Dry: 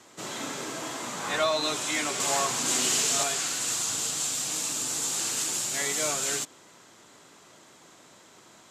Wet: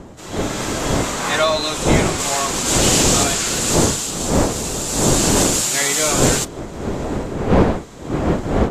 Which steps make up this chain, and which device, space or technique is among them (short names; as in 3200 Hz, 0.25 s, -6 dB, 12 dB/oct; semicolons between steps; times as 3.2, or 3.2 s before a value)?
smartphone video outdoors (wind noise 440 Hz -28 dBFS; AGC gain up to 16 dB; gain -1 dB; AAC 64 kbps 32000 Hz)